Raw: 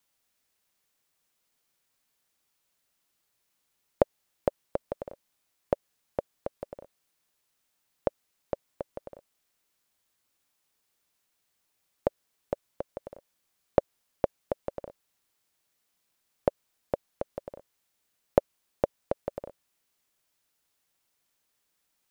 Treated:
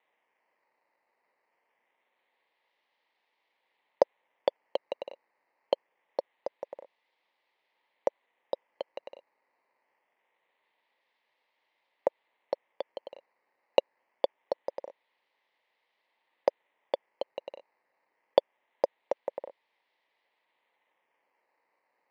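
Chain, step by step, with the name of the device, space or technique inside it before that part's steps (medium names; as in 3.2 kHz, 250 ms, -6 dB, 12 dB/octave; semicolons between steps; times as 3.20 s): circuit-bent sampling toy (decimation with a swept rate 9×, swing 100% 0.24 Hz; cabinet simulation 420–4000 Hz, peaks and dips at 520 Hz +5 dB, 910 Hz +8 dB, 1.4 kHz -9 dB, 2 kHz +8 dB); trim -2 dB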